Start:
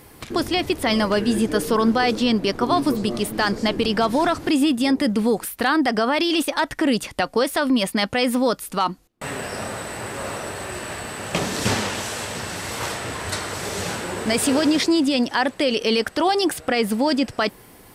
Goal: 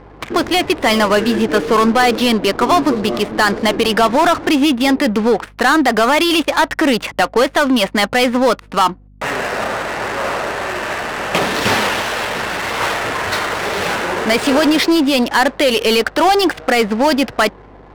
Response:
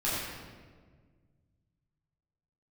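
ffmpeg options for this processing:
-filter_complex "[0:a]asplit=2[a][b];[b]highpass=f=720:p=1,volume=15dB,asoftclip=type=tanh:threshold=-6.5dB[c];[a][c]amix=inputs=2:normalize=0,lowpass=f=2.7k:p=1,volume=-6dB,adynamicsmooth=sensitivity=5:basefreq=540,aeval=exprs='val(0)+0.00447*(sin(2*PI*50*n/s)+sin(2*PI*2*50*n/s)/2+sin(2*PI*3*50*n/s)/3+sin(2*PI*4*50*n/s)/4+sin(2*PI*5*50*n/s)/5)':c=same,volume=4dB"

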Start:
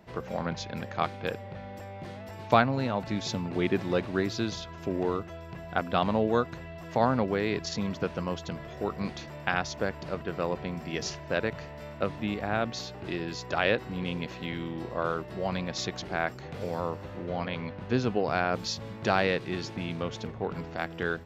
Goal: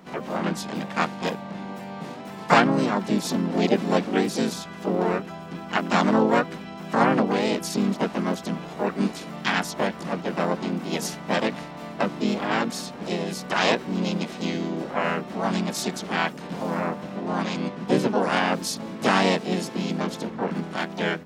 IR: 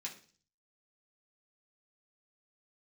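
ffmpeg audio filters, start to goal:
-filter_complex "[0:a]asplit=4[a][b][c][d];[b]asetrate=52444,aresample=44100,atempo=0.840896,volume=-1dB[e];[c]asetrate=66075,aresample=44100,atempo=0.66742,volume=-3dB[f];[d]asetrate=88200,aresample=44100,atempo=0.5,volume=-4dB[g];[a][e][f][g]amix=inputs=4:normalize=0,lowshelf=f=140:t=q:w=3:g=-9"

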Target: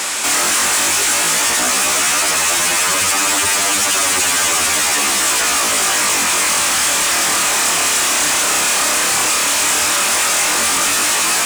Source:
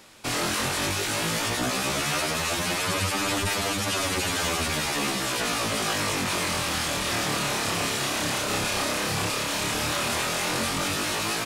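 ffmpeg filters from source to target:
-filter_complex "[0:a]asplit=2[a][b];[b]highpass=f=720:p=1,volume=37dB,asoftclip=type=tanh:threshold=-15dB[c];[a][c]amix=inputs=2:normalize=0,lowpass=f=6.2k:p=1,volume=-6dB,equalizer=f=125:t=o:w=1:g=-12,equalizer=f=500:t=o:w=1:g=-4,equalizer=f=4k:t=o:w=1:g=-4,equalizer=f=8k:t=o:w=1:g=10,asplit=2[d][e];[e]acrusher=bits=2:mode=log:mix=0:aa=0.000001,volume=-4dB[f];[d][f]amix=inputs=2:normalize=0,highpass=50"

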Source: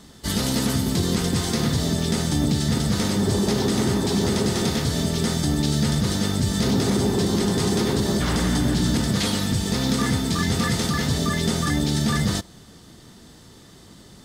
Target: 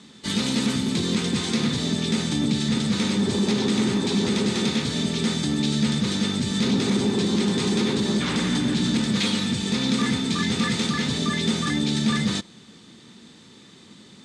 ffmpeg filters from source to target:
-af "highpass=150,equalizer=f=220:t=q:w=4:g=6,equalizer=f=670:t=q:w=4:g=-7,equalizer=f=2.4k:t=q:w=4:g=8,equalizer=f=3.7k:t=q:w=4:g=6,equalizer=f=5.2k:t=q:w=4:g=-3,lowpass=f=8.6k:w=0.5412,lowpass=f=8.6k:w=1.3066,acontrast=46,volume=-7.5dB"

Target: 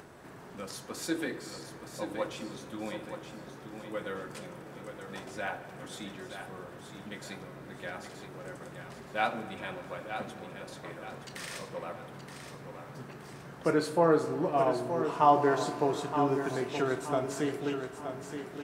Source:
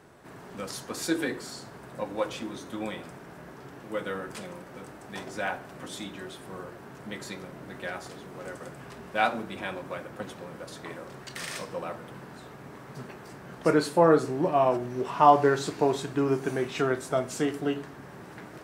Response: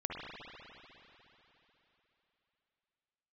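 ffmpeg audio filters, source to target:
-filter_complex "[0:a]asplit=2[a][b];[1:a]atrim=start_sample=2205[c];[b][c]afir=irnorm=-1:irlink=0,volume=-13.5dB[d];[a][d]amix=inputs=2:normalize=0,acompressor=mode=upward:threshold=-38dB:ratio=2.5,asplit=2[e][f];[f]aecho=0:1:923|1846|2769|3692:0.376|0.147|0.0572|0.0223[g];[e][g]amix=inputs=2:normalize=0,volume=-6dB"

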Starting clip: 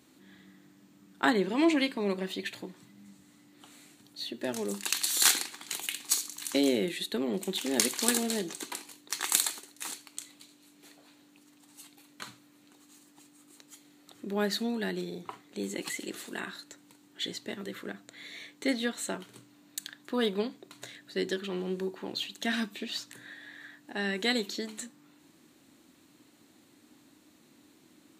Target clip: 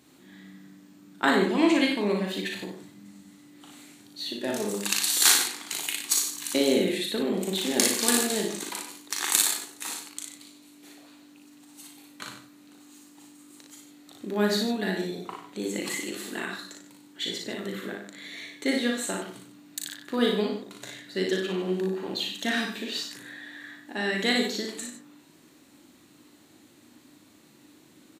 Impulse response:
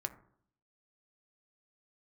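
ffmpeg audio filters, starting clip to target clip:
-filter_complex "[0:a]aecho=1:1:38|58:0.531|0.631,asplit=2[a][b];[1:a]atrim=start_sample=2205,adelay=95[c];[b][c]afir=irnorm=-1:irlink=0,volume=-8dB[d];[a][d]amix=inputs=2:normalize=0,volume=2dB"

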